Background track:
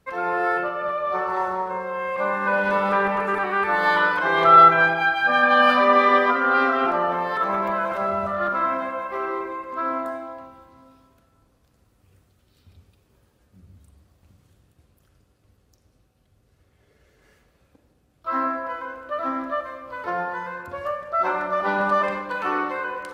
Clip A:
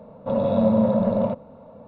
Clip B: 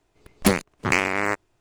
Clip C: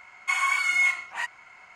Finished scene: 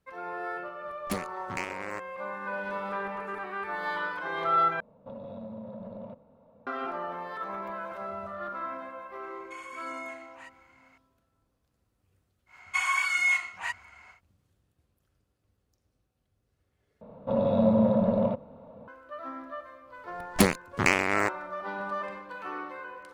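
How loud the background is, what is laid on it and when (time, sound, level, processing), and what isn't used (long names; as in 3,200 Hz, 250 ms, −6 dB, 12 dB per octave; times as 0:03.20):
background track −13 dB
0:00.65: mix in B −14.5 dB
0:04.80: overwrite with A −14 dB + downward compressor 5 to 1, threshold −24 dBFS
0:09.23: mix in C −11 dB + downward compressor 2 to 1, threshold −39 dBFS
0:12.46: mix in C −2.5 dB, fades 0.10 s
0:17.01: overwrite with A −3.5 dB
0:19.94: mix in B −2.5 dB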